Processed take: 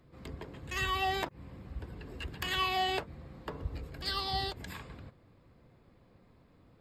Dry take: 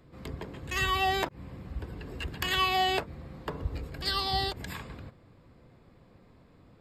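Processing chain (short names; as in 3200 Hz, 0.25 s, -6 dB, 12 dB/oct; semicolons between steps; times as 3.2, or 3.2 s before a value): flange 1.6 Hz, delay 0.9 ms, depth 3 ms, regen -85%; Nellymoser 88 kbps 44100 Hz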